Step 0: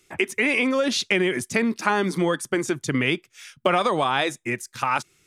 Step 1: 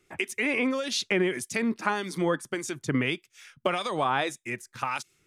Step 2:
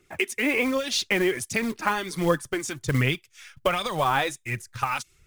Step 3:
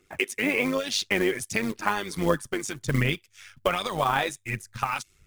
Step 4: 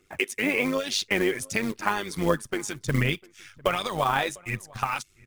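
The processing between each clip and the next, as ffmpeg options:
ffmpeg -i in.wav -filter_complex "[0:a]acrossover=split=2200[link_01][link_02];[link_01]aeval=exprs='val(0)*(1-0.7/2+0.7/2*cos(2*PI*1.7*n/s))':channel_layout=same[link_03];[link_02]aeval=exprs='val(0)*(1-0.7/2-0.7/2*cos(2*PI*1.7*n/s))':channel_layout=same[link_04];[link_03][link_04]amix=inputs=2:normalize=0,volume=-2dB" out.wav
ffmpeg -i in.wav -af "acrusher=bits=5:mode=log:mix=0:aa=0.000001,aphaser=in_gain=1:out_gain=1:delay=4.2:decay=0.41:speed=1.3:type=triangular,asubboost=boost=7.5:cutoff=97,volume=2.5dB" out.wav
ffmpeg -i in.wav -af "tremolo=f=100:d=0.621,volume=1.5dB" out.wav
ffmpeg -i in.wav -filter_complex "[0:a]asplit=2[link_01][link_02];[link_02]adelay=699.7,volume=-24dB,highshelf=frequency=4000:gain=-15.7[link_03];[link_01][link_03]amix=inputs=2:normalize=0" out.wav

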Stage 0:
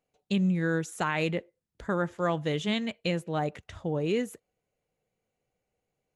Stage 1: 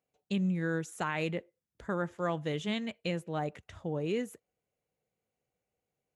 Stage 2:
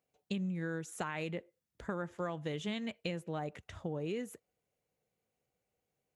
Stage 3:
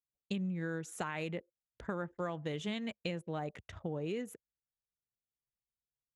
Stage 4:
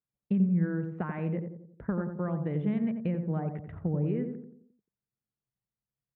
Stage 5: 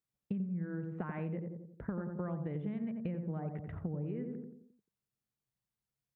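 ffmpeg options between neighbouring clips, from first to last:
ffmpeg -i in.wav -af "highpass=50,equalizer=frequency=4200:width_type=o:width=0.77:gain=-2,volume=-4.5dB" out.wav
ffmpeg -i in.wav -af "acompressor=threshold=-35dB:ratio=6,volume=1dB" out.wav
ffmpeg -i in.wav -af "anlmdn=0.001" out.wav
ffmpeg -i in.wav -filter_complex "[0:a]lowpass=frequency=2000:width=0.5412,lowpass=frequency=2000:width=1.3066,equalizer=frequency=160:width_type=o:width=1.9:gain=12.5,asplit=2[link_01][link_02];[link_02]adelay=88,lowpass=frequency=910:poles=1,volume=-5dB,asplit=2[link_03][link_04];[link_04]adelay=88,lowpass=frequency=910:poles=1,volume=0.49,asplit=2[link_05][link_06];[link_06]adelay=88,lowpass=frequency=910:poles=1,volume=0.49,asplit=2[link_07][link_08];[link_08]adelay=88,lowpass=frequency=910:poles=1,volume=0.49,asplit=2[link_09][link_10];[link_10]adelay=88,lowpass=frequency=910:poles=1,volume=0.49,asplit=2[link_11][link_12];[link_12]adelay=88,lowpass=frequency=910:poles=1,volume=0.49[link_13];[link_03][link_05][link_07][link_09][link_11][link_13]amix=inputs=6:normalize=0[link_14];[link_01][link_14]amix=inputs=2:normalize=0,volume=-1dB" out.wav
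ffmpeg -i in.wav -af "acompressor=threshold=-35dB:ratio=6" out.wav

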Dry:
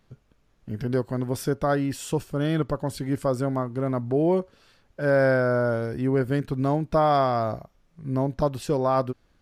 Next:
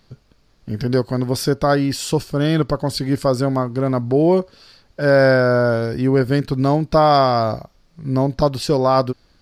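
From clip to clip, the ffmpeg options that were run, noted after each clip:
ffmpeg -i in.wav -af "equalizer=frequency=4600:width_type=o:width=0.46:gain=11.5,volume=7dB" out.wav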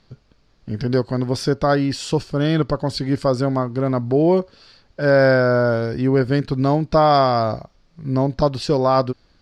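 ffmpeg -i in.wav -af "lowpass=6400,volume=-1dB" out.wav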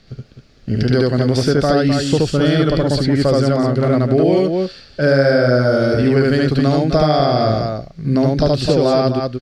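ffmpeg -i in.wav -filter_complex "[0:a]asplit=2[link_01][link_02];[link_02]aecho=0:1:72.89|256.6:1|0.398[link_03];[link_01][link_03]amix=inputs=2:normalize=0,acrossover=split=700|1900|3800[link_04][link_05][link_06][link_07];[link_04]acompressor=threshold=-20dB:ratio=4[link_08];[link_05]acompressor=threshold=-29dB:ratio=4[link_09];[link_06]acompressor=threshold=-40dB:ratio=4[link_10];[link_07]acompressor=threshold=-38dB:ratio=4[link_11];[link_08][link_09][link_10][link_11]amix=inputs=4:normalize=0,equalizer=frequency=970:width_type=o:width=0.38:gain=-13,volume=7.5dB" out.wav

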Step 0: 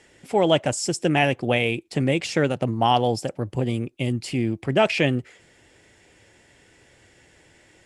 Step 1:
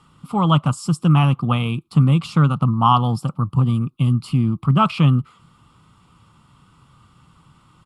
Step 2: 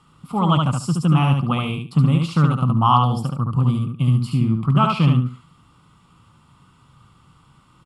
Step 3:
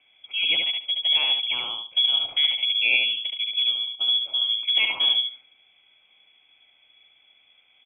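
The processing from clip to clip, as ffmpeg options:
ffmpeg -i in.wav -af "firequalizer=gain_entry='entry(100,0);entry(150,9);entry(360,-14);entry(620,-16);entry(1200,15);entry(1700,-22);entry(2900,-7);entry(4300,-7);entry(6100,-17);entry(10000,-6)':delay=0.05:min_phase=1,volume=5.5dB" out.wav
ffmpeg -i in.wav -af "aecho=1:1:72|144|216:0.668|0.14|0.0295,volume=-2dB" out.wav
ffmpeg -i in.wav -af "lowpass=frequency=3000:width_type=q:width=0.5098,lowpass=frequency=3000:width_type=q:width=0.6013,lowpass=frequency=3000:width_type=q:width=0.9,lowpass=frequency=3000:width_type=q:width=2.563,afreqshift=-3500,volume=-6dB" out.wav

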